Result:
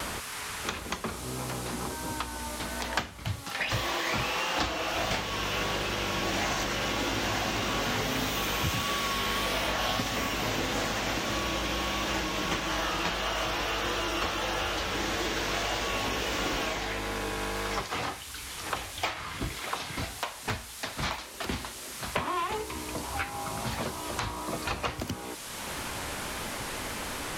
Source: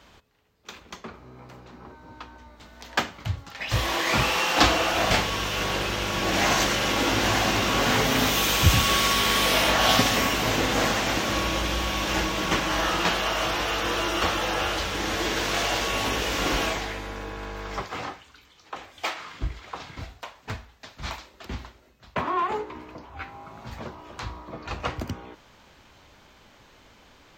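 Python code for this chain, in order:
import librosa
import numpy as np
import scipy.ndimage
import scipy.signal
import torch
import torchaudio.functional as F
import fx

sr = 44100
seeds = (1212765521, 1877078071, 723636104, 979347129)

y = fx.dmg_noise_band(x, sr, seeds[0], low_hz=840.0, high_hz=12000.0, level_db=-54.0)
y = fx.vibrato(y, sr, rate_hz=1.6, depth_cents=30.0)
y = fx.band_squash(y, sr, depth_pct=100)
y = y * 10.0 ** (-6.0 / 20.0)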